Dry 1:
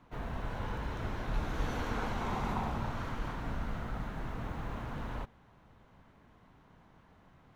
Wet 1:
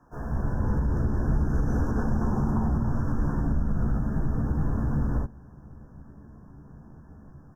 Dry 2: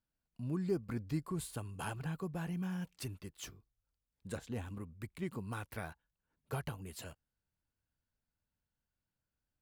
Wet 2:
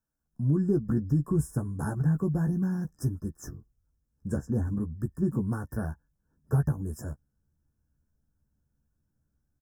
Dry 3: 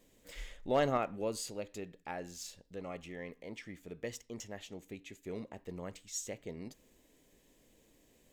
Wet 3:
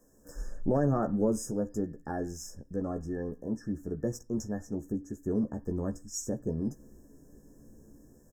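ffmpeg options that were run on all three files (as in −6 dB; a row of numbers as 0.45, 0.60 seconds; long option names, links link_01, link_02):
-filter_complex "[0:a]acrossover=split=350|1900[link_01][link_02][link_03];[link_01]dynaudnorm=framelen=140:gausssize=5:maxgain=13.5dB[link_04];[link_04][link_02][link_03]amix=inputs=3:normalize=0,asplit=2[link_05][link_06];[link_06]adelay=14,volume=-5.5dB[link_07];[link_05][link_07]amix=inputs=2:normalize=0,afftfilt=real='re*(1-between(b*sr/4096,1800,5000))':imag='im*(1-between(b*sr/4096,1800,5000))':win_size=4096:overlap=0.75,alimiter=limit=-18dB:level=0:latency=1:release=103,volume=1.5dB"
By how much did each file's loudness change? +10.5, +12.0, +7.0 LU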